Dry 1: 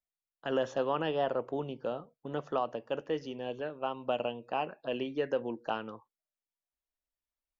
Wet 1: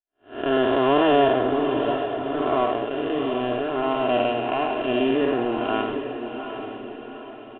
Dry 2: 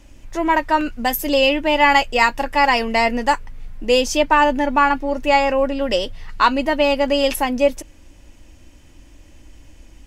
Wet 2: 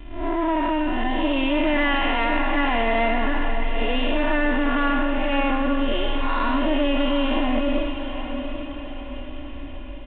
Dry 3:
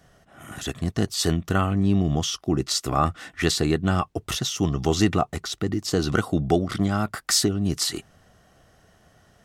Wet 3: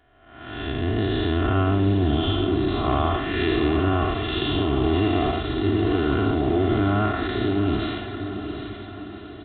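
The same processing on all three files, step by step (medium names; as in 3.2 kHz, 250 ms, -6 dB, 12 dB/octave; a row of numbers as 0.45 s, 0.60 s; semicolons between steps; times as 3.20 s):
spectral blur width 278 ms; comb 2.9 ms, depth 88%; in parallel at -1 dB: compressor with a negative ratio -28 dBFS, ratio -1; on the sum: saturation -16.5 dBFS; power-law waveshaper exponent 1.4; echo that smears into a reverb 771 ms, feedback 49%, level -8 dB; resampled via 8 kHz; normalise loudness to -23 LUFS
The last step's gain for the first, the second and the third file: +11.5 dB, 0.0 dB, +3.0 dB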